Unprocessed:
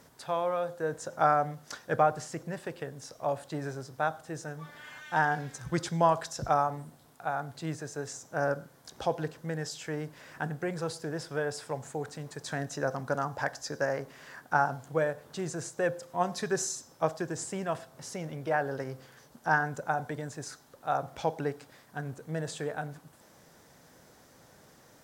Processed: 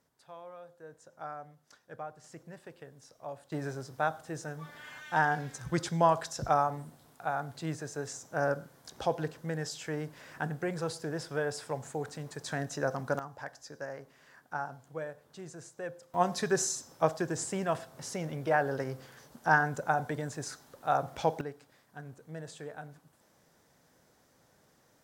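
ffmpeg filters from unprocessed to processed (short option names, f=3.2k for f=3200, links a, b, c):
-af "asetnsamples=n=441:p=0,asendcmd='2.24 volume volume -11dB;3.52 volume volume -0.5dB;13.19 volume volume -10.5dB;16.14 volume volume 1.5dB;21.41 volume volume -8.5dB',volume=-17.5dB"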